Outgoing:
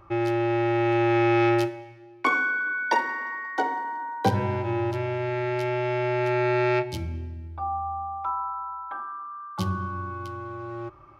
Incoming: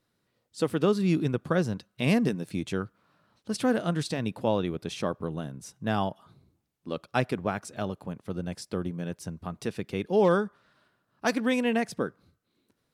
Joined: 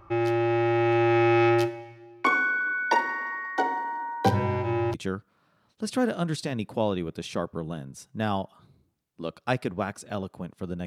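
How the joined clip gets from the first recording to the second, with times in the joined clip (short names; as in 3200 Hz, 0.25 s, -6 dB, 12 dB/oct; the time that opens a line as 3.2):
outgoing
4.94 switch to incoming from 2.61 s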